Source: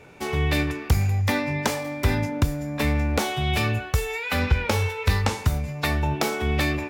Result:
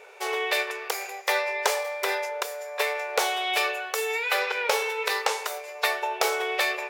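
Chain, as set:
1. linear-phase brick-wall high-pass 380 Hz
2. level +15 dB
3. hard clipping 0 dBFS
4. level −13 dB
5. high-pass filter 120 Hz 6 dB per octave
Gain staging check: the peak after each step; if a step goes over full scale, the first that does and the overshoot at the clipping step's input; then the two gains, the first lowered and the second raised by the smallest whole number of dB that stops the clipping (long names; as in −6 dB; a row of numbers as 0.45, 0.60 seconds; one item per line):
−9.5, +5.5, 0.0, −13.0, −11.5 dBFS
step 2, 5.5 dB
step 2 +9 dB, step 4 −7 dB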